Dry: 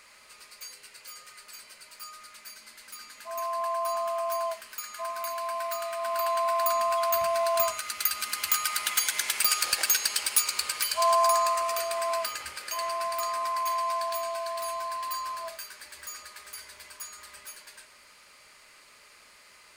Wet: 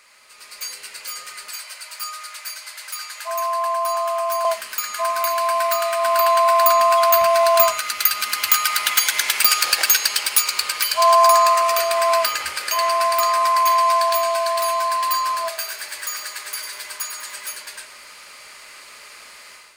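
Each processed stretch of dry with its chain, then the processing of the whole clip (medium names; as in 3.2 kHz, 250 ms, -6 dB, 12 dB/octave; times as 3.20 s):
1.50–4.45 s: high-pass 570 Hz 24 dB/octave + compression 2:1, threshold -34 dBFS
15.48–17.53 s: bass shelf 190 Hz -11.5 dB + feedback delay 99 ms, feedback 44%, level -7.5 dB
whole clip: bass shelf 310 Hz -8.5 dB; level rider gain up to 11.5 dB; dynamic bell 8.8 kHz, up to -5 dB, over -32 dBFS, Q 1.1; trim +2 dB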